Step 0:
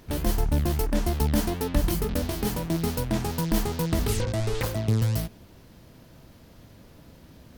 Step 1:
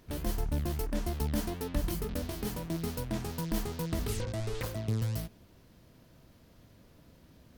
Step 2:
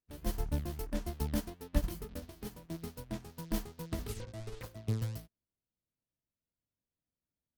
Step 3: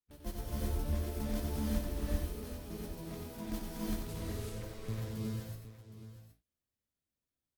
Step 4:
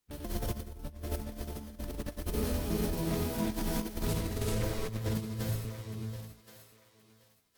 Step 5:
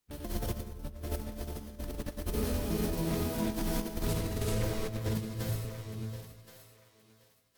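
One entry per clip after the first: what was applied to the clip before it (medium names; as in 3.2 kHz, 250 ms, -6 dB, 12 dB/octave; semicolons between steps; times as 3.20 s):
band-stop 840 Hz, Q 19; trim -8 dB
upward expansion 2.5:1, over -53 dBFS; trim +3 dB
multi-tap echo 92/766 ms -5.5/-13 dB; gated-style reverb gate 400 ms rising, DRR -5 dB; trim -7 dB
compressor with a negative ratio -41 dBFS, ratio -0.5; thinning echo 1074 ms, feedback 22%, high-pass 730 Hz, level -12 dB; trim +7.5 dB
algorithmic reverb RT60 1.1 s, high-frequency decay 0.5×, pre-delay 65 ms, DRR 13 dB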